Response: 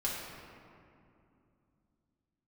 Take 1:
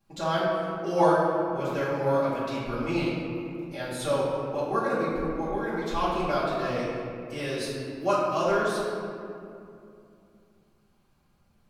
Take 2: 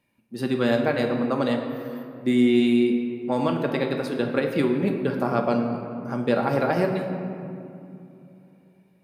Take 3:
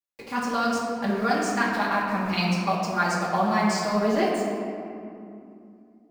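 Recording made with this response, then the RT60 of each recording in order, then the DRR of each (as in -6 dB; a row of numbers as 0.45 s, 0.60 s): 3; 2.6 s, 2.7 s, 2.6 s; -13.0 dB, 2.0 dB, -6.5 dB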